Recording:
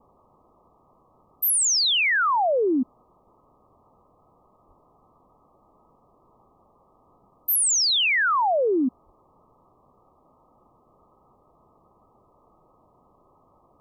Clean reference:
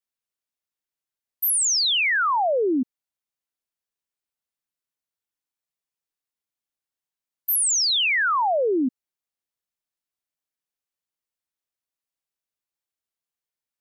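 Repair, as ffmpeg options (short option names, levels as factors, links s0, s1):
-filter_complex "[0:a]asplit=3[s0][s1][s2];[s0]afade=t=out:st=4.67:d=0.02[s3];[s1]highpass=f=140:w=0.5412,highpass=f=140:w=1.3066,afade=t=in:st=4.67:d=0.02,afade=t=out:st=4.79:d=0.02[s4];[s2]afade=t=in:st=4.79:d=0.02[s5];[s3][s4][s5]amix=inputs=3:normalize=0,asplit=3[s6][s7][s8];[s6]afade=t=out:st=9.05:d=0.02[s9];[s7]highpass=f=140:w=0.5412,highpass=f=140:w=1.3066,afade=t=in:st=9.05:d=0.02,afade=t=out:st=9.17:d=0.02[s10];[s8]afade=t=in:st=9.17:d=0.02[s11];[s9][s10][s11]amix=inputs=3:normalize=0,afwtdn=0.004"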